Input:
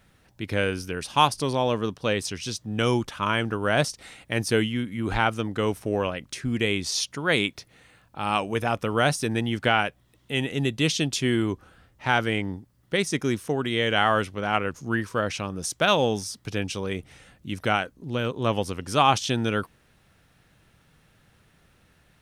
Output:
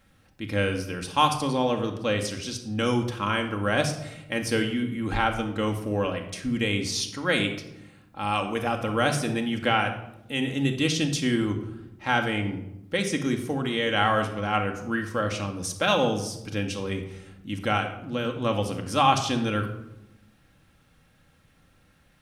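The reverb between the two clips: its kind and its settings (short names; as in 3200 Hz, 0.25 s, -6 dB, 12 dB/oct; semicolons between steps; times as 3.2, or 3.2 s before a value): shoebox room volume 2600 m³, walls furnished, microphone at 2.2 m; gain -3 dB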